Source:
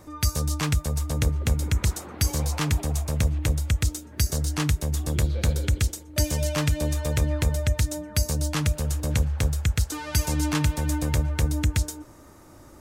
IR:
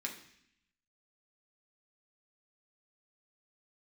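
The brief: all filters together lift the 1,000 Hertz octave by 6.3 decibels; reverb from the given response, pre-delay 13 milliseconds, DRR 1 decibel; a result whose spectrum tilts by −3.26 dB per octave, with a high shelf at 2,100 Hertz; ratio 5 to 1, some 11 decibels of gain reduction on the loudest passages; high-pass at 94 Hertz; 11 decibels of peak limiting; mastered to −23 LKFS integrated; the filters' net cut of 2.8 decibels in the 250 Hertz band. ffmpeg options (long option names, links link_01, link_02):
-filter_complex "[0:a]highpass=94,equalizer=frequency=250:width_type=o:gain=-4.5,equalizer=frequency=1000:width_type=o:gain=6,highshelf=frequency=2100:gain=7.5,acompressor=threshold=-31dB:ratio=5,alimiter=limit=-24dB:level=0:latency=1,asplit=2[link_01][link_02];[1:a]atrim=start_sample=2205,adelay=13[link_03];[link_02][link_03]afir=irnorm=-1:irlink=0,volume=-2dB[link_04];[link_01][link_04]amix=inputs=2:normalize=0,volume=13dB"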